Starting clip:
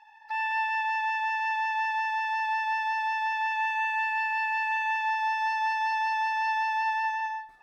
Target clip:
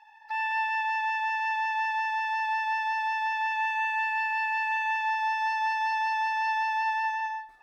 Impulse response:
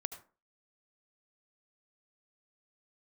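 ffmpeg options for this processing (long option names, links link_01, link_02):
-af "equalizer=frequency=150:width_type=o:width=1:gain=-8"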